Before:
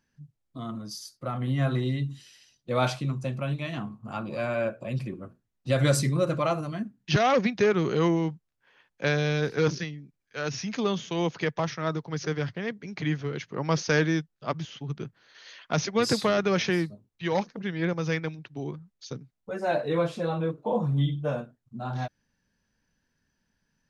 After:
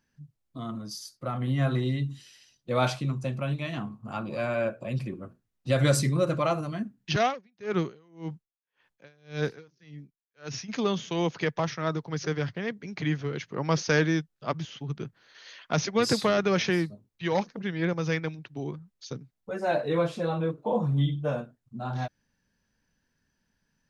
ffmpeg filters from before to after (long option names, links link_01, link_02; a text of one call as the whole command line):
ffmpeg -i in.wav -filter_complex "[0:a]asplit=3[link_01][link_02][link_03];[link_01]afade=type=out:start_time=7.12:duration=0.02[link_04];[link_02]aeval=exprs='val(0)*pow(10,-38*(0.5-0.5*cos(2*PI*1.8*n/s))/20)':channel_layout=same,afade=type=in:start_time=7.12:duration=0.02,afade=type=out:start_time=10.68:duration=0.02[link_05];[link_03]afade=type=in:start_time=10.68:duration=0.02[link_06];[link_04][link_05][link_06]amix=inputs=3:normalize=0" out.wav